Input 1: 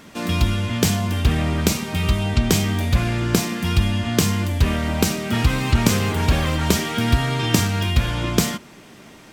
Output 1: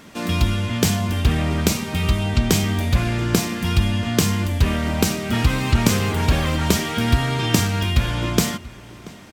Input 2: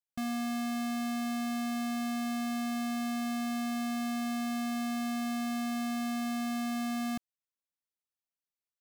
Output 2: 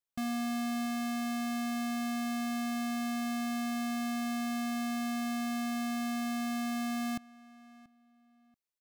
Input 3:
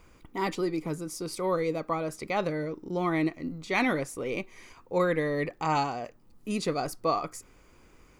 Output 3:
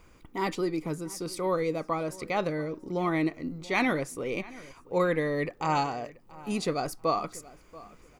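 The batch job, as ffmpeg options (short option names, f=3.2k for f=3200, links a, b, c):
-filter_complex "[0:a]asplit=2[a][b];[b]adelay=683,lowpass=f=3.4k:p=1,volume=-20dB,asplit=2[c][d];[d]adelay=683,lowpass=f=3.4k:p=1,volume=0.25[e];[a][c][e]amix=inputs=3:normalize=0"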